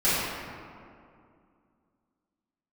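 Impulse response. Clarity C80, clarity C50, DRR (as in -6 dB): -1.0 dB, -3.5 dB, -14.5 dB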